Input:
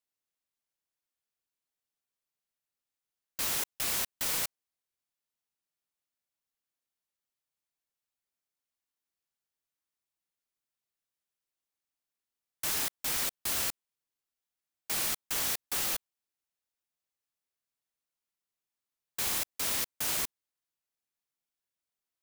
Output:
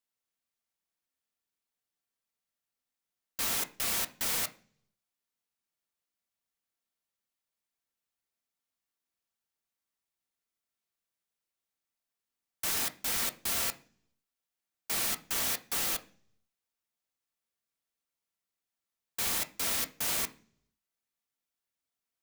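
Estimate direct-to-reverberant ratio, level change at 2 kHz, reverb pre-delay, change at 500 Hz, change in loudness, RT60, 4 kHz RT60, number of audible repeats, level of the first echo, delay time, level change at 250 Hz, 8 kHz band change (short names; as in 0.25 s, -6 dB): 6.0 dB, +1.0 dB, 4 ms, +1.0 dB, 0.0 dB, 0.45 s, 0.55 s, none, none, none, +1.5 dB, 0.0 dB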